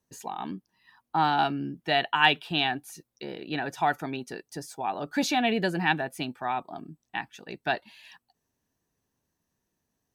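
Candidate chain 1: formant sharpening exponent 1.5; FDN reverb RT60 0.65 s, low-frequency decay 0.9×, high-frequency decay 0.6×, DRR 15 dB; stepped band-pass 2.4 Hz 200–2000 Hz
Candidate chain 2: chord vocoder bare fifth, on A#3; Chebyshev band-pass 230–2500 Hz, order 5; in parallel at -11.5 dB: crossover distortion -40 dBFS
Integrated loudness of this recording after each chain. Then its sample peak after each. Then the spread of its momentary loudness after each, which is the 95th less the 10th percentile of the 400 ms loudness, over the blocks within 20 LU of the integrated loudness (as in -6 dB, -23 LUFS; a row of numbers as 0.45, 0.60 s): -36.5, -28.5 LUFS; -14.0, -11.5 dBFS; 19, 17 LU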